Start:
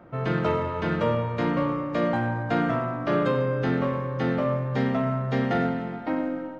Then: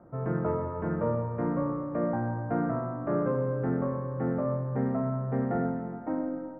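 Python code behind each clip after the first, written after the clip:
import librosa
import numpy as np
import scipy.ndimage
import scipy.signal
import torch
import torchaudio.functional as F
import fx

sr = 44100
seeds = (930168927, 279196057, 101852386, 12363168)

y = scipy.signal.sosfilt(scipy.signal.bessel(6, 1000.0, 'lowpass', norm='mag', fs=sr, output='sos'), x)
y = y * librosa.db_to_amplitude(-3.5)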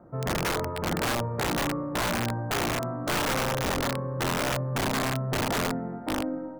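y = (np.mod(10.0 ** (23.5 / 20.0) * x + 1.0, 2.0) - 1.0) / 10.0 ** (23.5 / 20.0)
y = y * librosa.db_to_amplitude(2.0)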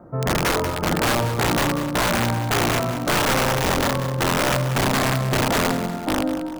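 y = fx.echo_feedback(x, sr, ms=190, feedback_pct=44, wet_db=-11)
y = y * librosa.db_to_amplitude(7.0)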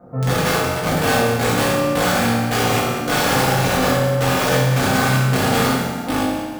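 y = fx.rev_fdn(x, sr, rt60_s=1.1, lf_ratio=0.95, hf_ratio=0.9, size_ms=12.0, drr_db=-8.0)
y = y * librosa.db_to_amplitude(-5.5)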